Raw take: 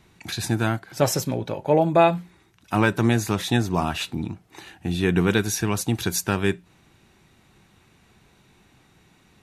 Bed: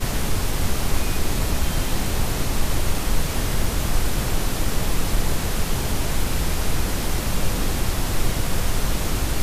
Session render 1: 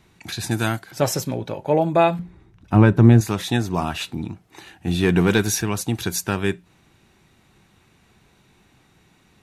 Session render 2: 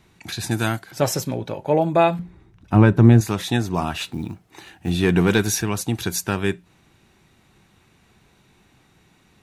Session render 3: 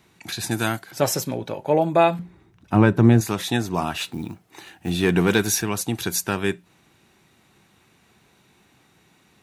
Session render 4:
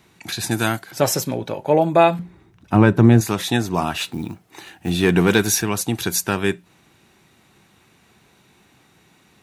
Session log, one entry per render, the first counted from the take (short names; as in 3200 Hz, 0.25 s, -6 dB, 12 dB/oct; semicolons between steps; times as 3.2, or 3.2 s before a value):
0.51–0.91 high shelf 3400 Hz +11 dB; 2.19–3.21 tilt -3.5 dB/oct; 4.87–5.62 sample leveller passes 1
3.97–4.9 short-mantissa float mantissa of 4-bit
HPF 150 Hz 6 dB/oct; high shelf 12000 Hz +5.5 dB
gain +3 dB; limiter -2 dBFS, peak gain reduction 1.5 dB